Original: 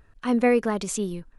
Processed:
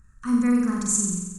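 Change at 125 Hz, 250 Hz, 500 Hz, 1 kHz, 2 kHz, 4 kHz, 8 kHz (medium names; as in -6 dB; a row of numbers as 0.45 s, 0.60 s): +3.0 dB, +3.5 dB, -14.0 dB, -6.5 dB, -6.0 dB, no reading, +11.0 dB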